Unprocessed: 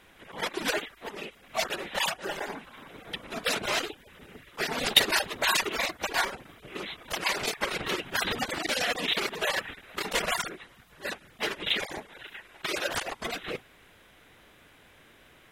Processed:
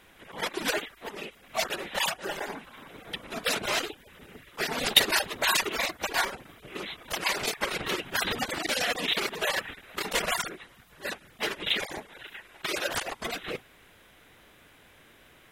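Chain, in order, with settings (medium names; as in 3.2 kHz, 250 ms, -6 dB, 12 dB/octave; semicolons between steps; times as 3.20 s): treble shelf 10 kHz +4.5 dB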